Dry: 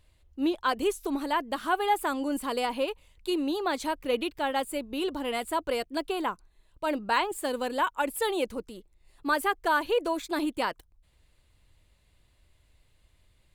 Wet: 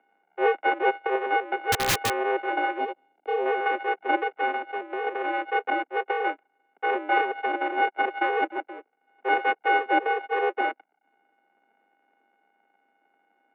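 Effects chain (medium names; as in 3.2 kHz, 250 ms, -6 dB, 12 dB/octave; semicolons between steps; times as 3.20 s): sorted samples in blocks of 64 samples; bass shelf 460 Hz +4 dB; mistuned SSB +110 Hz 200–2400 Hz; 1.72–2.17 s: integer overflow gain 20.5 dB; 2.78–3.46 s: peaking EQ 1.6 kHz -9.5 dB 1.5 oct; 4.51–5.07 s: compression, threshold -30 dBFS, peak gain reduction 7 dB; trim +3 dB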